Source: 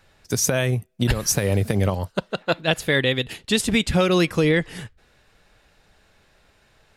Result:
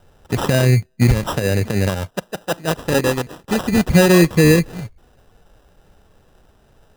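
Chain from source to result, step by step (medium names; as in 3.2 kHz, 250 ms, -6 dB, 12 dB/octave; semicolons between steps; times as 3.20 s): 1.27–3.78 s: bass shelf 210 Hz -9.5 dB; harmonic-percussive split harmonic +5 dB; bass shelf 440 Hz +6.5 dB; sample-and-hold 20×; trim -1.5 dB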